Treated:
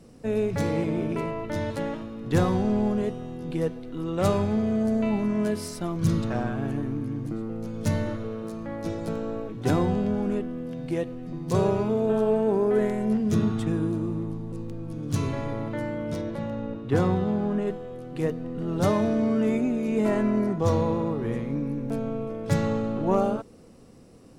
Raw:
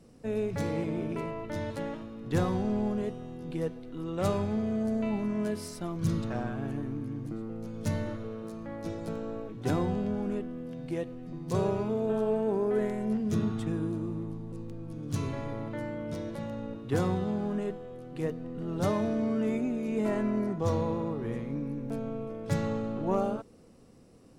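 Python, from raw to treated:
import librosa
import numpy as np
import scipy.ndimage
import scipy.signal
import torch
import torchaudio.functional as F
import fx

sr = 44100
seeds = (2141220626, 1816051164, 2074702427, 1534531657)

y = fx.high_shelf(x, sr, hz=5100.0, db=-10.5, at=(16.21, 17.67))
y = F.gain(torch.from_numpy(y), 5.5).numpy()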